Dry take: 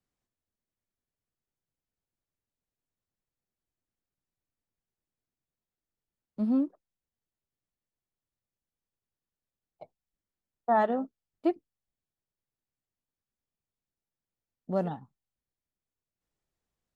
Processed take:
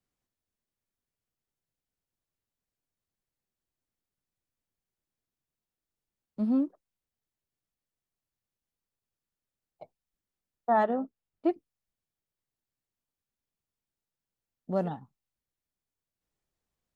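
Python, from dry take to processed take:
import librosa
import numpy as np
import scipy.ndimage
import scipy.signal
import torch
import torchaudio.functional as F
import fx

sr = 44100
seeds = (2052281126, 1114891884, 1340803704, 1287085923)

y = fx.lowpass(x, sr, hz=2200.0, slope=6, at=(10.84, 11.49))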